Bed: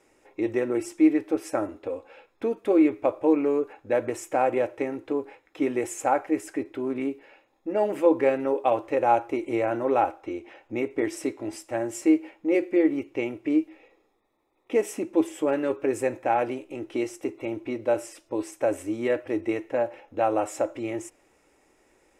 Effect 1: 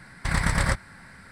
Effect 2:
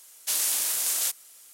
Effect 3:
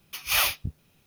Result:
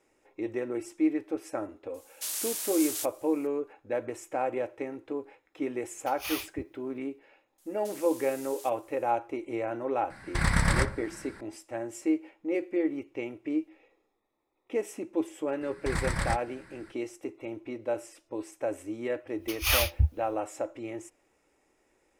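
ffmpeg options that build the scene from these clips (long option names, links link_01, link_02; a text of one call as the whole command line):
ffmpeg -i bed.wav -i cue0.wav -i cue1.wav -i cue2.wav -filter_complex "[2:a]asplit=2[link_01][link_02];[3:a]asplit=2[link_03][link_04];[1:a]asplit=2[link_05][link_06];[0:a]volume=-7dB[link_07];[link_01]highpass=42[link_08];[link_02]acompressor=threshold=-30dB:ratio=6:attack=3.2:release=140:knee=1:detection=peak[link_09];[link_05]asplit=2[link_10][link_11];[link_11]adelay=60,lowpass=frequency=1200:poles=1,volume=-9dB,asplit=2[link_12][link_13];[link_13]adelay=60,lowpass=frequency=1200:poles=1,volume=0.49,asplit=2[link_14][link_15];[link_15]adelay=60,lowpass=frequency=1200:poles=1,volume=0.49,asplit=2[link_16][link_17];[link_17]adelay=60,lowpass=frequency=1200:poles=1,volume=0.49,asplit=2[link_18][link_19];[link_19]adelay=60,lowpass=frequency=1200:poles=1,volume=0.49,asplit=2[link_20][link_21];[link_21]adelay=60,lowpass=frequency=1200:poles=1,volume=0.49[link_22];[link_10][link_12][link_14][link_16][link_18][link_20][link_22]amix=inputs=7:normalize=0[link_23];[link_04]lowshelf=frequency=110:width_type=q:width=3:gain=11[link_24];[link_08]atrim=end=1.53,asetpts=PTS-STARTPTS,volume=-8dB,afade=type=in:duration=0.004:curve=hsin,afade=type=out:start_time=1.526:duration=0.004:curve=hsin,adelay=1940[link_25];[link_03]atrim=end=1.06,asetpts=PTS-STARTPTS,volume=-12.5dB,afade=type=in:duration=0.004:curve=hsin,afade=type=out:start_time=1.056:duration=0.004:curve=hsin,adelay=261513S[link_26];[link_09]atrim=end=1.53,asetpts=PTS-STARTPTS,volume=-14dB,afade=type=in:duration=0.004:curve=hsin,afade=type=out:start_time=1.526:duration=0.004:curve=hsin,adelay=7580[link_27];[link_23]atrim=end=1.31,asetpts=PTS-STARTPTS,volume=-2dB,afade=type=in:duration=0.004:curve=hsin,afade=type=out:start_time=1.306:duration=0.004:curve=hsin,adelay=445410S[link_28];[link_06]atrim=end=1.31,asetpts=PTS-STARTPTS,volume=-7dB,afade=type=in:duration=0.004:curve=hsin,afade=type=out:start_time=1.306:duration=0.004:curve=hsin,adelay=15610[link_29];[link_24]atrim=end=1.06,asetpts=PTS-STARTPTS,volume=-2.5dB,afade=type=in:duration=0.1,afade=type=out:start_time=0.96:duration=0.1,adelay=19350[link_30];[link_07][link_25][link_26][link_27][link_28][link_29][link_30]amix=inputs=7:normalize=0" out.wav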